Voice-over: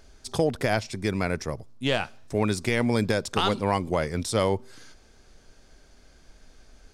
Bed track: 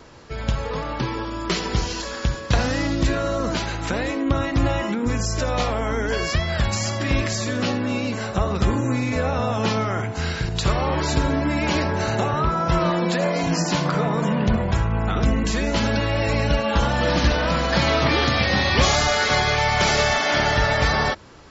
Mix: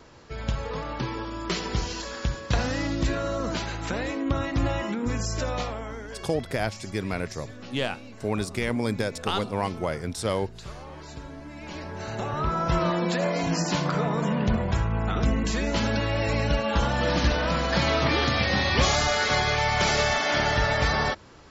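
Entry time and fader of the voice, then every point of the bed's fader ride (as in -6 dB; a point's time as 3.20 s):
5.90 s, -3.0 dB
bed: 5.46 s -5 dB
6.34 s -19.5 dB
11.51 s -19.5 dB
12.55 s -4 dB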